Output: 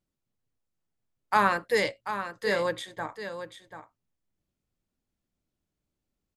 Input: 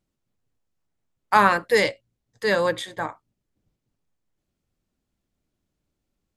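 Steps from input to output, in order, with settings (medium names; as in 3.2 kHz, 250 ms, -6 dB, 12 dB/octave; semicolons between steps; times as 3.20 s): delay 738 ms -10 dB; trim -6 dB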